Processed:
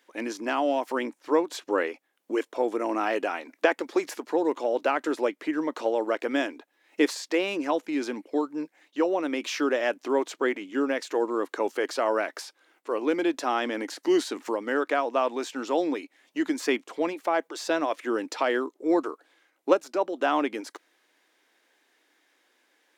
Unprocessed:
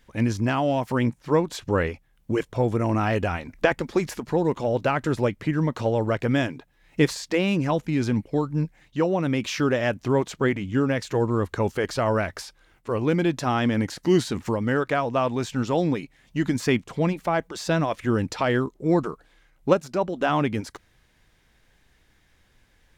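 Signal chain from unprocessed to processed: Chebyshev high-pass 290 Hz, order 4; gain -1 dB

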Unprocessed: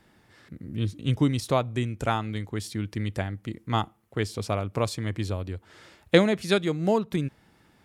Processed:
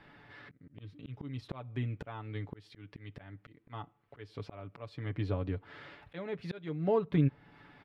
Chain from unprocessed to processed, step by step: comb 7 ms, depth 57%; auto swell 0.762 s; air absorption 380 m; mismatched tape noise reduction encoder only

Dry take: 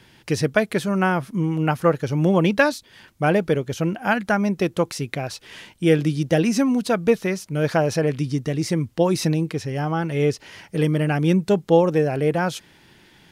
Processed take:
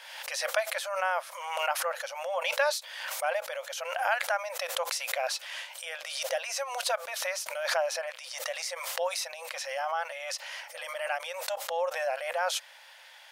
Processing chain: reverse; compressor 5:1, threshold -26 dBFS, peak gain reduction 14.5 dB; reverse; brick-wall FIR high-pass 510 Hz; backwards sustainer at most 45 dB/s; gain +2 dB

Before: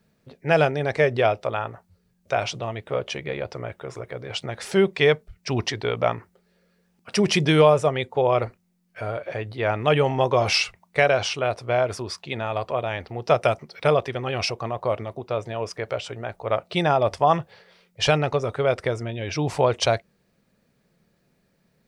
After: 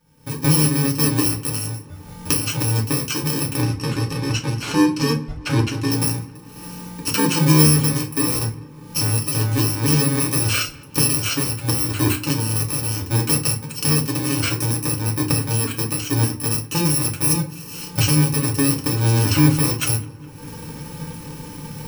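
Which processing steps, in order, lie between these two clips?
FFT order left unsorted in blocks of 64 samples; recorder AGC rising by 57 dB/s; high shelf 7800 Hz -5.5 dB; hard clip -5.5 dBFS, distortion -31 dB; 3.61–5.91 air absorption 69 m; darkening echo 0.204 s, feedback 81%, low-pass 3100 Hz, level -23 dB; FDN reverb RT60 0.32 s, low-frequency decay 1.6×, high-frequency decay 0.75×, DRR -1 dB; gain -1 dB

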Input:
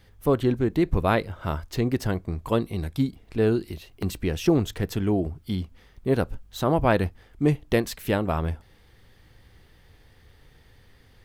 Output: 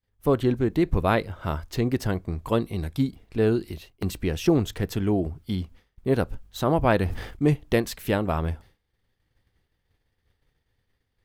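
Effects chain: expander -41 dBFS; 7.02–7.54 sustainer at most 64 dB/s

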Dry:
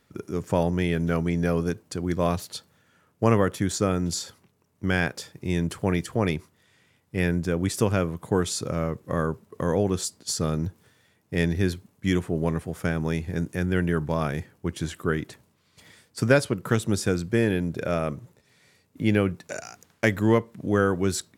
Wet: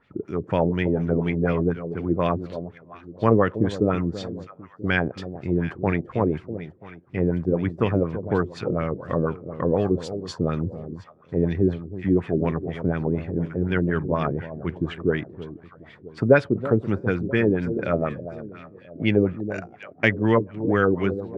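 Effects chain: echo with dull and thin repeats by turns 0.328 s, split 820 Hz, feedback 60%, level -11 dB; LFO low-pass sine 4.1 Hz 320–3000 Hz

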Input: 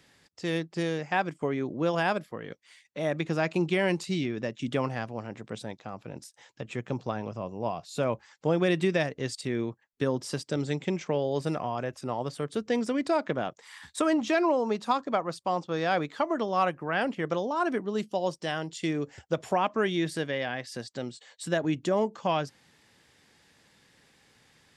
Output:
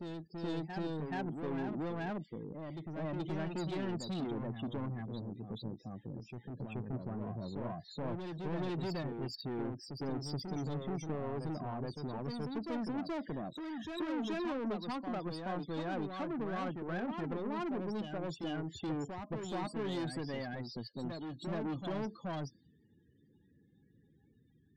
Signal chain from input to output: low-pass opened by the level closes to 3000 Hz, open at -24 dBFS; band shelf 1100 Hz -8 dB 2.7 oct; in parallel at -1 dB: limiter -24 dBFS, peak gain reduction 8.5 dB; on the sum: loudest bins only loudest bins 16; soft clip -30 dBFS, distortion -7 dB; on a send: reverse echo 0.427 s -5 dB; on the sum: mismatched tape noise reduction decoder only; gain -5 dB

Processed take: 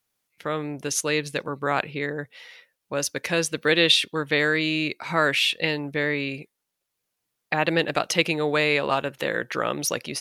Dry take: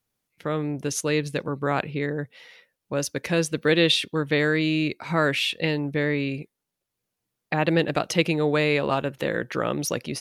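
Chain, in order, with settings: low shelf 440 Hz -10 dB; gain +3.5 dB

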